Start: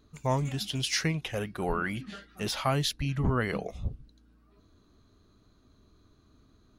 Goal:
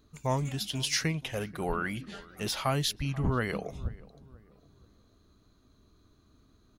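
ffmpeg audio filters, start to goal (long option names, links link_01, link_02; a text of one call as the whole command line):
ffmpeg -i in.wav -filter_complex "[0:a]highshelf=frequency=7000:gain=5,asplit=2[link_01][link_02];[link_02]adelay=484,lowpass=frequency=1200:poles=1,volume=-19.5dB,asplit=2[link_03][link_04];[link_04]adelay=484,lowpass=frequency=1200:poles=1,volume=0.41,asplit=2[link_05][link_06];[link_06]adelay=484,lowpass=frequency=1200:poles=1,volume=0.41[link_07];[link_01][link_03][link_05][link_07]amix=inputs=4:normalize=0,volume=-1.5dB" out.wav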